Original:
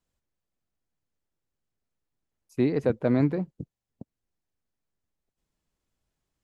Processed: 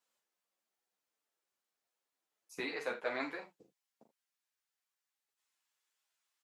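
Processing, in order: HPF 550 Hz 12 dB/oct, from 2.59 s 1200 Hz; early reflections 41 ms -7.5 dB, 77 ms -14.5 dB; ensemble effect; gain +5 dB

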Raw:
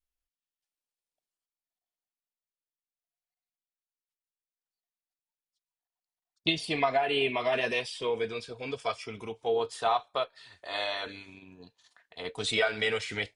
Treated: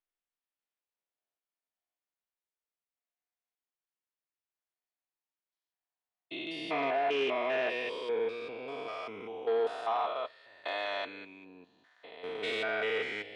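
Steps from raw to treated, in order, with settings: stepped spectrum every 0.2 s; sine folder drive 5 dB, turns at -18 dBFS; three-band isolator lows -18 dB, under 240 Hz, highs -16 dB, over 3300 Hz; on a send: reverb RT60 0.30 s, pre-delay 3 ms, DRR 18 dB; on the sum: gain -6.5 dB

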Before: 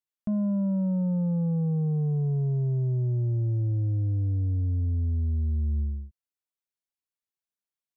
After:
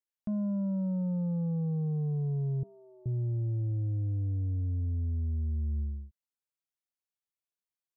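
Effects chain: 2.63–3.06 rippled Chebyshev high-pass 190 Hz, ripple 9 dB; gain -5 dB

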